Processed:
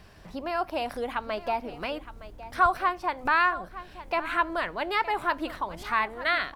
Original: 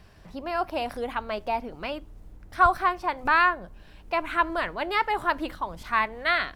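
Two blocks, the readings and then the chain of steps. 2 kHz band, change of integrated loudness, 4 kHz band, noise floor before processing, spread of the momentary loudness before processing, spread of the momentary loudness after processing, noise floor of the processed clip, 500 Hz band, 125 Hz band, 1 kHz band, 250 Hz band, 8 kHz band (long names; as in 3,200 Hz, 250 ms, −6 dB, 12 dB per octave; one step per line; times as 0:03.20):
−1.5 dB, −2.0 dB, −1.0 dB, −50 dBFS, 14 LU, 15 LU, −49 dBFS, −1.0 dB, −3.0 dB, −2.0 dB, −1.5 dB, can't be measured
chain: low-shelf EQ 160 Hz −4 dB
in parallel at +0.5 dB: downward compressor, threshold −35 dBFS, peak gain reduction 19.5 dB
on the sum: single-tap delay 916 ms −15 dB
level −3.5 dB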